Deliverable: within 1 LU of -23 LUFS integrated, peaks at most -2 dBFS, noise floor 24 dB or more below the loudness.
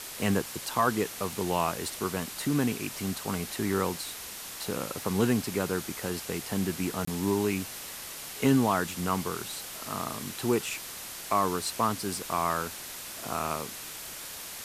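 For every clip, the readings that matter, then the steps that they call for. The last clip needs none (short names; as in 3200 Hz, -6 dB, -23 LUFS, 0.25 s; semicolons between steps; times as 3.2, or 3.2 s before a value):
dropouts 1; longest dropout 24 ms; noise floor -41 dBFS; noise floor target -55 dBFS; loudness -30.5 LUFS; peak -12.0 dBFS; loudness target -23.0 LUFS
-> interpolate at 7.05, 24 ms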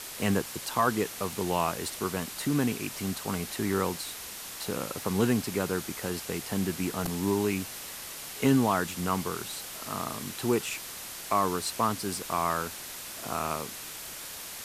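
dropouts 0; noise floor -41 dBFS; noise floor target -55 dBFS
-> denoiser 14 dB, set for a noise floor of -41 dBFS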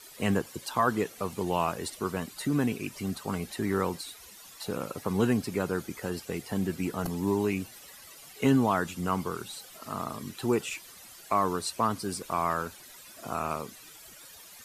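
noise floor -50 dBFS; noise floor target -55 dBFS
-> denoiser 6 dB, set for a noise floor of -50 dBFS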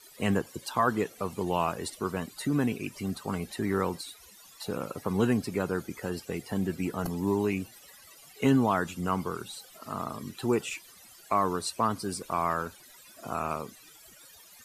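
noise floor -54 dBFS; noise floor target -55 dBFS
-> denoiser 6 dB, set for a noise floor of -54 dBFS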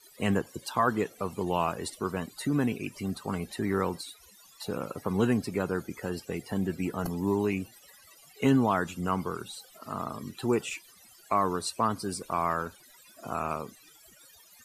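noise floor -57 dBFS; loudness -31.0 LUFS; peak -12.5 dBFS; loudness target -23.0 LUFS
-> gain +8 dB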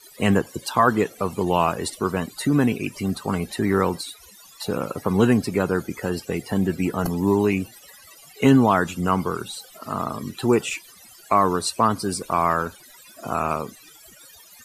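loudness -23.0 LUFS; peak -4.5 dBFS; noise floor -49 dBFS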